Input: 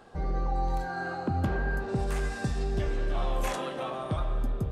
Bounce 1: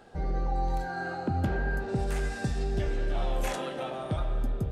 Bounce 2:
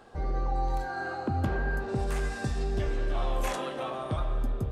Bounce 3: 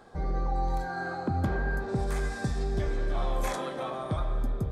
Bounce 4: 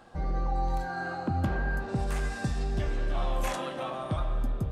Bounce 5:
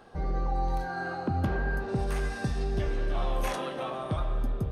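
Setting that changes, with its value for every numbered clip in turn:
notch filter, centre frequency: 1,100, 170, 2,800, 420, 7,400 Hertz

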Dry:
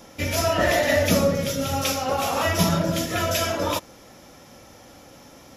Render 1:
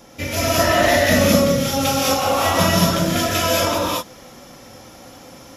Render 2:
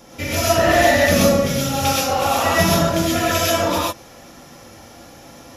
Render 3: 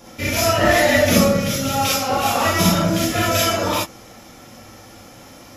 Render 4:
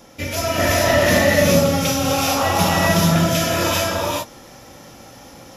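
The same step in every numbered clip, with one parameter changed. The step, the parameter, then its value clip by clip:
reverb whose tail is shaped and stops, gate: 250, 150, 80, 470 milliseconds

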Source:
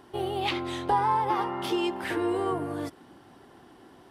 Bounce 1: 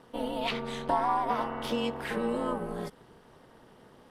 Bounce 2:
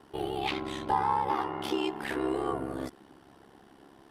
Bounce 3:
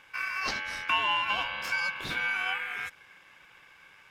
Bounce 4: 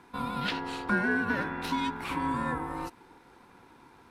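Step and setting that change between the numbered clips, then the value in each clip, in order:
ring modulation, frequency: 120, 34, 1,900, 620 Hertz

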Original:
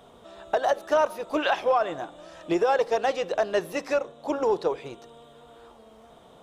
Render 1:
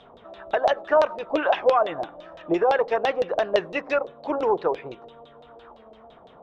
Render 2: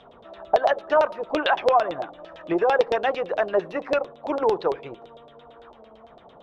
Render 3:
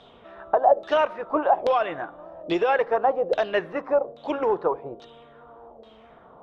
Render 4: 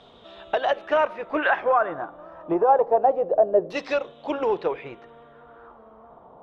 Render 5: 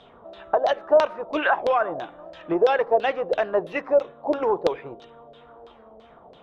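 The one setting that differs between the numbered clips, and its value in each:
auto-filter low-pass, speed: 5.9, 8.9, 1.2, 0.27, 3 Hertz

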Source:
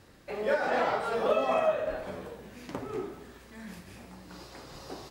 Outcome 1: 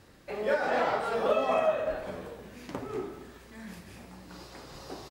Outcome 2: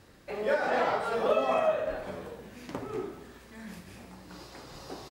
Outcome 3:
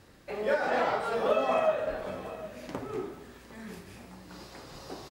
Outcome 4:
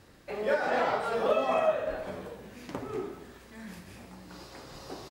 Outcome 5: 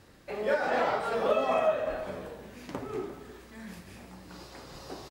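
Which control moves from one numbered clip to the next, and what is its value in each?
single-tap delay, delay time: 219, 73, 758, 124, 348 milliseconds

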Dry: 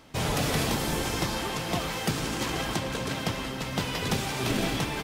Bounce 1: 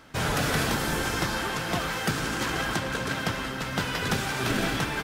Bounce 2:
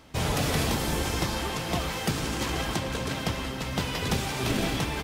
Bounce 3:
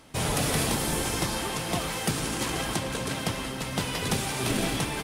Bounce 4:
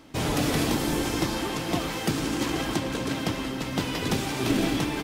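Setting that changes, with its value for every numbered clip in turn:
parametric band, centre frequency: 1,500, 68, 9,700, 300 Hertz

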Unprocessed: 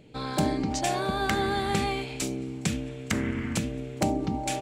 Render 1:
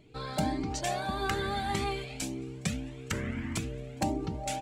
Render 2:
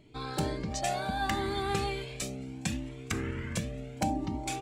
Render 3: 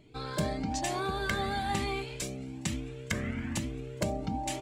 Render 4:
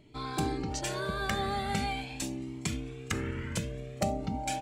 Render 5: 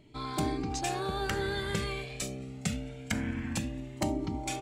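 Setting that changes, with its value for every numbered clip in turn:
flanger whose copies keep moving one way, speed: 1.7, 0.69, 1.1, 0.39, 0.24 Hertz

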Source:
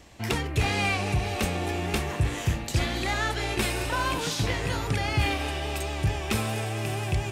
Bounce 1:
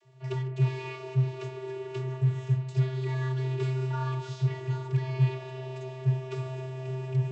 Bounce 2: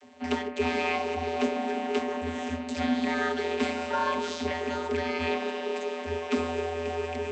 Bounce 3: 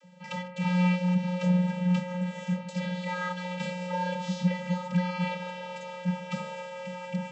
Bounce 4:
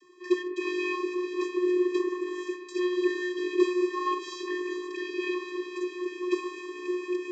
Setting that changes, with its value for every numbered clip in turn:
channel vocoder, frequency: 130, 83, 180, 360 Hertz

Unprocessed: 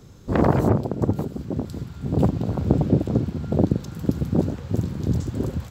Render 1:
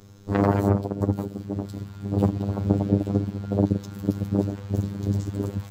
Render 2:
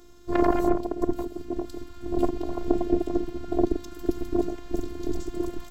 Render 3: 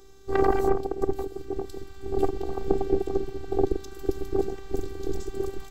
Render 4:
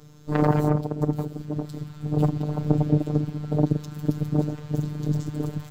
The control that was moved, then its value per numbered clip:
phases set to zero, frequency: 100, 350, 390, 150 Hertz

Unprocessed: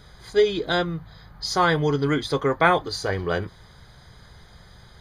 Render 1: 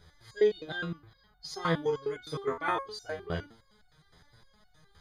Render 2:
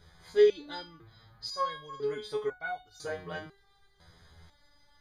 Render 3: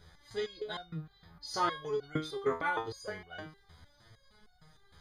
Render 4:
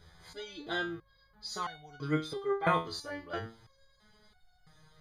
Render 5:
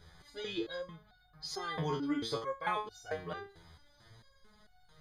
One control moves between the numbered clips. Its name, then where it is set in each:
step-sequenced resonator, speed: 9.7, 2, 6.5, 3, 4.5 Hertz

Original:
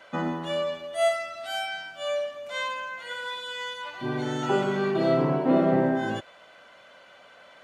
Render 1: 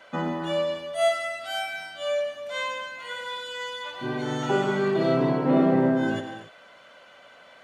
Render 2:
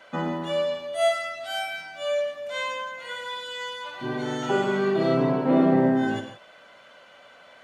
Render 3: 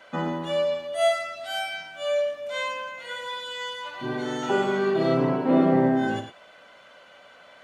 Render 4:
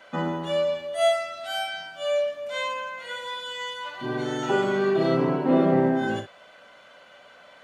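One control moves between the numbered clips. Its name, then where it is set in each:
reverb whose tail is shaped and stops, gate: 310, 190, 130, 80 milliseconds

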